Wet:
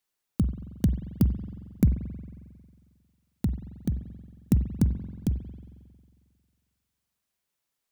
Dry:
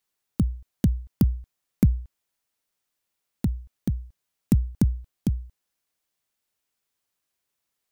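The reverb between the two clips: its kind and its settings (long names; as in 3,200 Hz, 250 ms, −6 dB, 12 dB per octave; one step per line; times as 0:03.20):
spring reverb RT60 1.9 s, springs 45 ms, chirp 60 ms, DRR 9.5 dB
level −2 dB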